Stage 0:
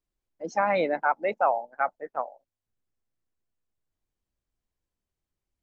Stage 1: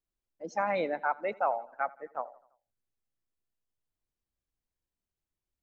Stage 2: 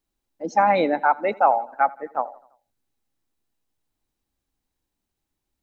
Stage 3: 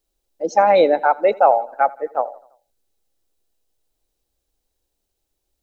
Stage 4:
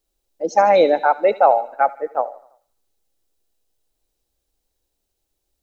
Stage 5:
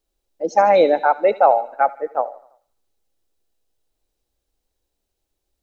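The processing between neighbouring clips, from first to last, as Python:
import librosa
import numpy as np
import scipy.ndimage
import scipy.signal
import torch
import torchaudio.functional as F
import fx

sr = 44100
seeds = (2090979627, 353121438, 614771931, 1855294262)

y1 = fx.echo_feedback(x, sr, ms=84, feedback_pct=56, wet_db=-23.0)
y1 = y1 * 10.0 ** (-5.5 / 20.0)
y2 = fx.small_body(y1, sr, hz=(270.0, 820.0, 3900.0), ring_ms=25, db=7)
y2 = y2 * 10.0 ** (8.5 / 20.0)
y3 = fx.graphic_eq(y2, sr, hz=(125, 250, 500, 1000, 2000), db=(-10, -9, 6, -7, -6))
y3 = y3 * 10.0 ** (7.0 / 20.0)
y4 = fx.echo_wet_highpass(y3, sr, ms=74, feedback_pct=54, hz=3300.0, wet_db=-8.5)
y5 = fx.high_shelf(y4, sr, hz=5000.0, db=-5.0)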